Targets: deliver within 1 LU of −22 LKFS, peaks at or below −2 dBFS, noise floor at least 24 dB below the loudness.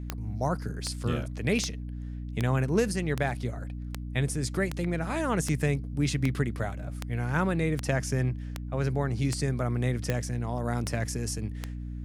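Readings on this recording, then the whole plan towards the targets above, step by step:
number of clicks 16; mains hum 60 Hz; hum harmonics up to 300 Hz; level of the hum −34 dBFS; integrated loudness −30.0 LKFS; sample peak −11.5 dBFS; target loudness −22.0 LKFS
→ click removal
hum removal 60 Hz, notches 5
level +8 dB

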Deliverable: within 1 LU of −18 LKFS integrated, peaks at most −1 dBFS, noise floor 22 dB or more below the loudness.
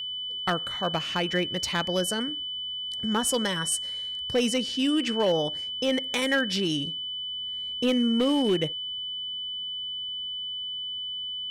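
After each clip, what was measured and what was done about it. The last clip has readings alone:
share of clipped samples 0.5%; peaks flattened at −17.5 dBFS; interfering tone 3,000 Hz; level of the tone −31 dBFS; integrated loudness −27.0 LKFS; sample peak −17.5 dBFS; target loudness −18.0 LKFS
→ clipped peaks rebuilt −17.5 dBFS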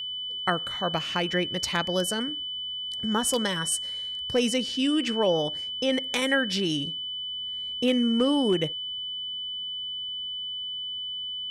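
share of clipped samples 0.0%; interfering tone 3,000 Hz; level of the tone −31 dBFS
→ notch filter 3,000 Hz, Q 30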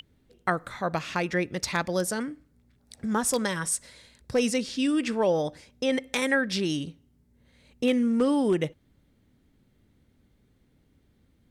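interfering tone none found; integrated loudness −27.5 LKFS; sample peak −9.0 dBFS; target loudness −18.0 LKFS
→ level +9.5 dB
brickwall limiter −1 dBFS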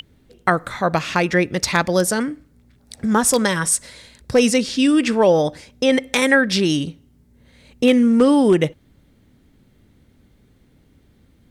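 integrated loudness −18.0 LKFS; sample peak −1.0 dBFS; background noise floor −56 dBFS

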